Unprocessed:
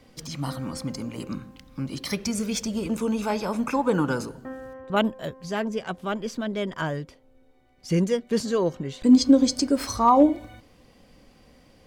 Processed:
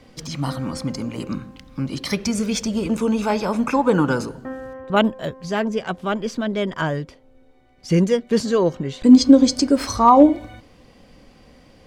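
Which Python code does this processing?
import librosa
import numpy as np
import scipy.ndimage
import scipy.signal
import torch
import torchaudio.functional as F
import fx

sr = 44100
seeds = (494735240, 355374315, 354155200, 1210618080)

y = fx.high_shelf(x, sr, hz=11000.0, db=-11.0)
y = F.gain(torch.from_numpy(y), 5.5).numpy()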